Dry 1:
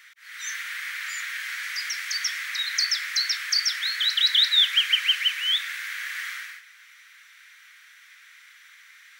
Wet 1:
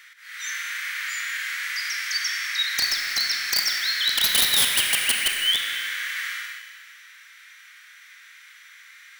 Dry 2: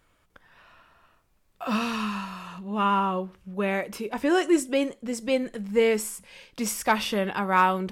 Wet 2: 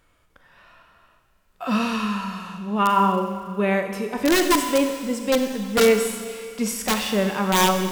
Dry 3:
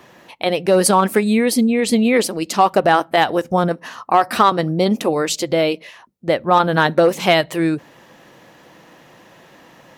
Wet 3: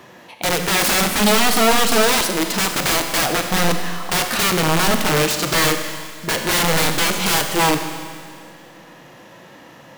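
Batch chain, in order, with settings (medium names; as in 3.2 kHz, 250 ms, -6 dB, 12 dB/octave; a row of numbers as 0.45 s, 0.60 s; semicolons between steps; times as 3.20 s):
integer overflow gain 14.5 dB; Schroeder reverb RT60 2.1 s, combs from 31 ms, DRR 8 dB; harmonic-percussive split harmonic +7 dB; trim -2 dB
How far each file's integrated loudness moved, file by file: +1.0 LU, +4.5 LU, -0.5 LU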